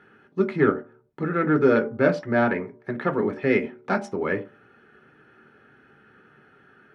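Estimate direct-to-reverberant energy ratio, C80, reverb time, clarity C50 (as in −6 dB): 4.0 dB, 19.5 dB, 0.45 s, 15.0 dB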